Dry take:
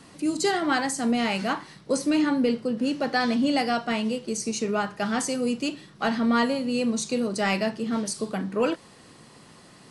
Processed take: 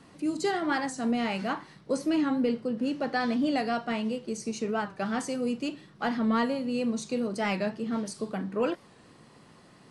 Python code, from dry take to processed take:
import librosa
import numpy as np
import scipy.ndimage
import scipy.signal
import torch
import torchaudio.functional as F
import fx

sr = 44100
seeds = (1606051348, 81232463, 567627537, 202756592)

y = fx.high_shelf(x, sr, hz=3600.0, db=-8.0)
y = fx.record_warp(y, sr, rpm=45.0, depth_cents=100.0)
y = y * 10.0 ** (-3.5 / 20.0)